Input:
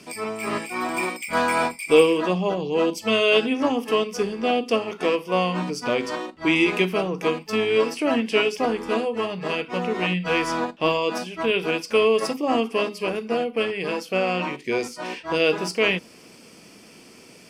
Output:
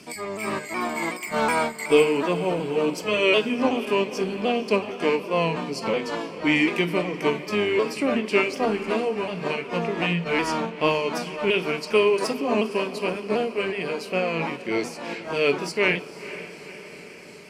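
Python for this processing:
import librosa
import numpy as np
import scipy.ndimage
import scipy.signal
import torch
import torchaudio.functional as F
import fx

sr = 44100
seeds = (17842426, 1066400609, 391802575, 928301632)

y = fx.pitch_ramps(x, sr, semitones=-2.0, every_ms=371)
y = fx.echo_diffused(y, sr, ms=484, feedback_pct=61, wet_db=-14.5)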